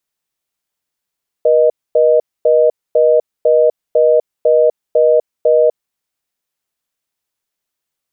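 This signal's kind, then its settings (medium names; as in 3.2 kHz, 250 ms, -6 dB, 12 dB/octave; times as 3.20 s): call progress tone reorder tone, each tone -10 dBFS 4.40 s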